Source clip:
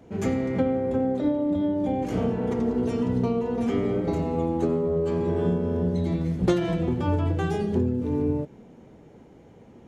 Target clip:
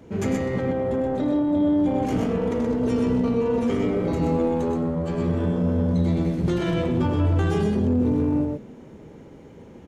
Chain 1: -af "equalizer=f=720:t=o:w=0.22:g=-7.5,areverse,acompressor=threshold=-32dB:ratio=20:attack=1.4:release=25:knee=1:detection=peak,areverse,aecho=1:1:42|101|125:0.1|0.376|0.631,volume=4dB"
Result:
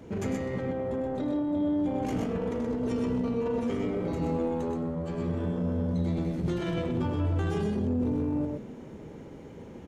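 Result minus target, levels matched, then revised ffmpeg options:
compressor: peak gain reduction +7 dB
-af "equalizer=f=720:t=o:w=0.22:g=-7.5,areverse,acompressor=threshold=-24.5dB:ratio=20:attack=1.4:release=25:knee=1:detection=peak,areverse,aecho=1:1:42|101|125:0.1|0.376|0.631,volume=4dB"

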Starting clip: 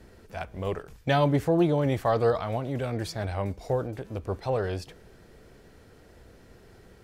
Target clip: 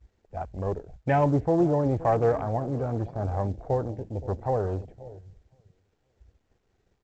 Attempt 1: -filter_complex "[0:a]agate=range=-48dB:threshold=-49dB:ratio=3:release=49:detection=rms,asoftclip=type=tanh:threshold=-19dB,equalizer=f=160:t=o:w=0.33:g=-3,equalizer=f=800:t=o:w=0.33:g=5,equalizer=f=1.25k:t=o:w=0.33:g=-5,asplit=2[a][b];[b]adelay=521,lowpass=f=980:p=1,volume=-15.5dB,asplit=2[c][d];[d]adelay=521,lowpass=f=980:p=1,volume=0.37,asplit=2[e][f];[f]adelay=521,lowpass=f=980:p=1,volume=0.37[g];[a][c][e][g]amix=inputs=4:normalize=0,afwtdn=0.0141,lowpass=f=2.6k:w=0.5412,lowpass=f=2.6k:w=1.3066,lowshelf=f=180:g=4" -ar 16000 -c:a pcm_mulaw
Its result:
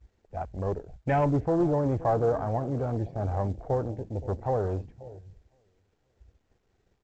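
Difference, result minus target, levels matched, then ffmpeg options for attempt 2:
soft clip: distortion +13 dB
-filter_complex "[0:a]agate=range=-48dB:threshold=-49dB:ratio=3:release=49:detection=rms,asoftclip=type=tanh:threshold=-10.5dB,equalizer=f=160:t=o:w=0.33:g=-3,equalizer=f=800:t=o:w=0.33:g=5,equalizer=f=1.25k:t=o:w=0.33:g=-5,asplit=2[a][b];[b]adelay=521,lowpass=f=980:p=1,volume=-15.5dB,asplit=2[c][d];[d]adelay=521,lowpass=f=980:p=1,volume=0.37,asplit=2[e][f];[f]adelay=521,lowpass=f=980:p=1,volume=0.37[g];[a][c][e][g]amix=inputs=4:normalize=0,afwtdn=0.0141,lowpass=f=2.6k:w=0.5412,lowpass=f=2.6k:w=1.3066,lowshelf=f=180:g=4" -ar 16000 -c:a pcm_mulaw

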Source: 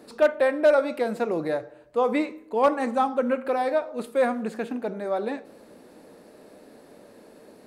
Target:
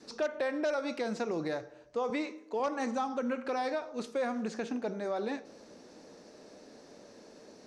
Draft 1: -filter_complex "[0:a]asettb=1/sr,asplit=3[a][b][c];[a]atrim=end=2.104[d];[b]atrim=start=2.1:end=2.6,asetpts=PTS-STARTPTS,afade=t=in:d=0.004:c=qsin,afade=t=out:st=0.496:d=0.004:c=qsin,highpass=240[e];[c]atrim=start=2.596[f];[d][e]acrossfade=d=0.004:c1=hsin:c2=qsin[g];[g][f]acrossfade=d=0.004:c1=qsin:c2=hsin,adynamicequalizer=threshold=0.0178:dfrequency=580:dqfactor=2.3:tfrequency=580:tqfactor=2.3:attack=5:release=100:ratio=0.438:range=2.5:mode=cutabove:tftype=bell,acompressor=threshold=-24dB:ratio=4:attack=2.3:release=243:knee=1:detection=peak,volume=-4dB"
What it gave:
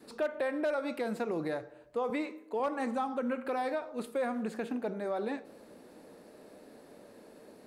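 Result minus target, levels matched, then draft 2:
8000 Hz band -5.5 dB
-filter_complex "[0:a]asettb=1/sr,asplit=3[a][b][c];[a]atrim=end=2.104[d];[b]atrim=start=2.1:end=2.6,asetpts=PTS-STARTPTS,afade=t=in:d=0.004:c=qsin,afade=t=out:st=0.496:d=0.004:c=qsin,highpass=240[e];[c]atrim=start=2.596[f];[d][e]acrossfade=d=0.004:c1=hsin:c2=qsin[g];[g][f]acrossfade=d=0.004:c1=qsin:c2=hsin,adynamicequalizer=threshold=0.0178:dfrequency=580:dqfactor=2.3:tfrequency=580:tqfactor=2.3:attack=5:release=100:ratio=0.438:range=2.5:mode=cutabove:tftype=bell,acompressor=threshold=-24dB:ratio=4:attack=2.3:release=243:knee=1:detection=peak,lowpass=f=5.9k:t=q:w=5.3,volume=-4dB"

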